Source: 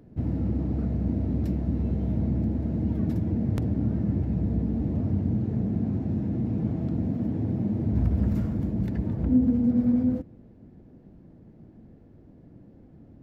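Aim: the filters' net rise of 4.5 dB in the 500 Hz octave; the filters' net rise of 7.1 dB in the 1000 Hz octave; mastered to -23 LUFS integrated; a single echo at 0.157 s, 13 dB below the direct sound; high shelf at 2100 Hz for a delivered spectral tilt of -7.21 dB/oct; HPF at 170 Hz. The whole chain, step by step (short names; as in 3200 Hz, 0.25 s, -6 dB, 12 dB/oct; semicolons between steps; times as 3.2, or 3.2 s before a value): HPF 170 Hz; bell 500 Hz +4 dB; bell 1000 Hz +7.5 dB; high shelf 2100 Hz +4 dB; echo 0.157 s -13 dB; gain +5 dB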